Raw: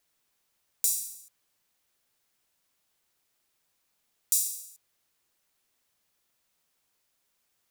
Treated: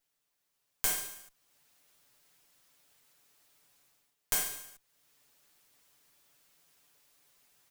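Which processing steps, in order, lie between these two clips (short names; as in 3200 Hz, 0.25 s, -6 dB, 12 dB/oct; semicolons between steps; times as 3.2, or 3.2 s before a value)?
minimum comb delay 6.9 ms; AGC gain up to 14 dB; gain -4.5 dB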